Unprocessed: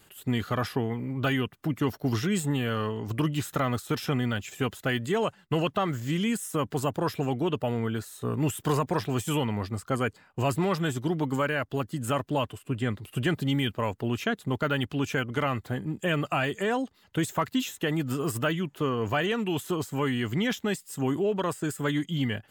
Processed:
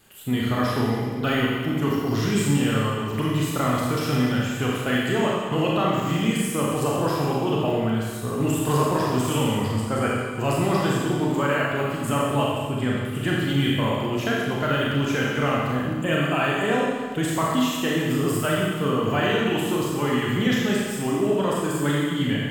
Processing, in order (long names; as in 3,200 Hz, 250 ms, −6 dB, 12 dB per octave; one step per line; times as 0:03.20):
four-comb reverb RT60 1.6 s, combs from 28 ms, DRR −4.5 dB
surface crackle 18 per second −37 dBFS